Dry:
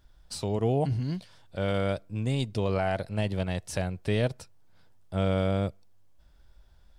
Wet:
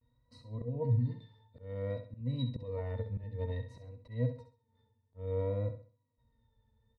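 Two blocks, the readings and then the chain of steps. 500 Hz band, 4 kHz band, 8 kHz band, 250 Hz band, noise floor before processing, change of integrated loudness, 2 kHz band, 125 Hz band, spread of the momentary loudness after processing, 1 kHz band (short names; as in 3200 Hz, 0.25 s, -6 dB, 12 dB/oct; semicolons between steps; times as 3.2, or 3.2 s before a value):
-9.0 dB, -14.5 dB, under -30 dB, -11.0 dB, -57 dBFS, -7.0 dB, -18.5 dB, -5.0 dB, 15 LU, -17.0 dB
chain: octave resonator A#, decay 0.13 s; vibrato 0.56 Hz 77 cents; auto swell 0.271 s; on a send: feedback echo 66 ms, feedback 32%, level -9.5 dB; on the sum: gain +4 dB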